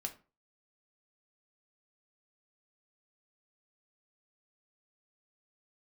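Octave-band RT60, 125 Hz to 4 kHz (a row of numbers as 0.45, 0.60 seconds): 0.40, 0.35, 0.35, 0.35, 0.30, 0.25 seconds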